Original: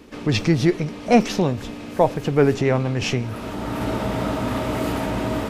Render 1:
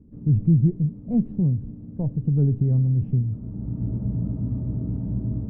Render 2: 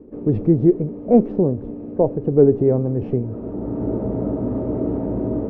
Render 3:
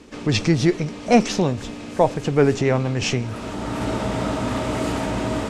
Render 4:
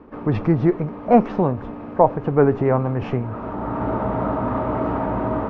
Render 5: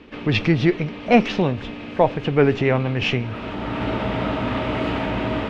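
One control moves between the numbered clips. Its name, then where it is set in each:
low-pass with resonance, frequency: 150, 430, 8,000, 1,100, 2,900 Hertz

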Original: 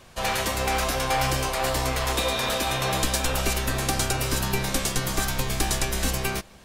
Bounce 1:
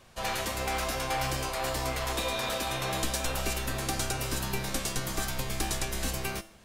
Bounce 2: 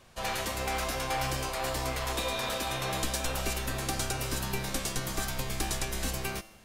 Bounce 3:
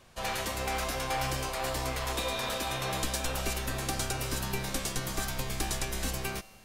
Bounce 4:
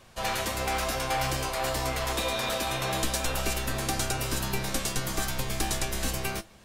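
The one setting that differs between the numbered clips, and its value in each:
tuned comb filter, decay: 0.47, 1, 2.1, 0.16 seconds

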